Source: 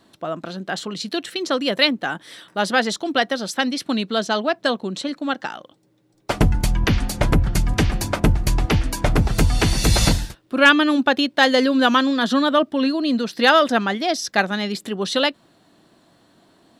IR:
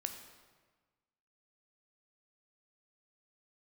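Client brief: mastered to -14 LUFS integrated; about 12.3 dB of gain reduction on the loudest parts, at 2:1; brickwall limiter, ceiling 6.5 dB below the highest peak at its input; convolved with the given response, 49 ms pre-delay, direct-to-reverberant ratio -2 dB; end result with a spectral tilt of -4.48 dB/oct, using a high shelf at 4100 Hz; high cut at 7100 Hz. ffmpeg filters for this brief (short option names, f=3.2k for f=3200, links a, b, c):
-filter_complex "[0:a]lowpass=7.1k,highshelf=f=4.1k:g=-8,acompressor=threshold=-34dB:ratio=2,alimiter=limit=-20.5dB:level=0:latency=1,asplit=2[a][b];[1:a]atrim=start_sample=2205,adelay=49[c];[b][c]afir=irnorm=-1:irlink=0,volume=3dB[d];[a][d]amix=inputs=2:normalize=0,volume=13.5dB"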